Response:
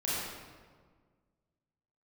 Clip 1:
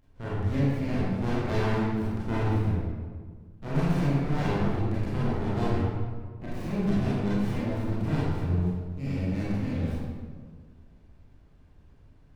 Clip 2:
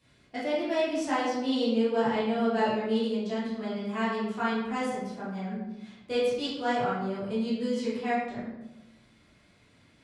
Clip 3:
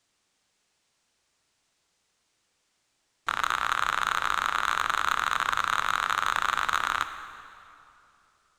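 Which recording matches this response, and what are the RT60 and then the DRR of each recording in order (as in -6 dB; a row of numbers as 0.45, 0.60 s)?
1; 1.6, 0.95, 2.8 s; -9.0, -10.5, 9.0 dB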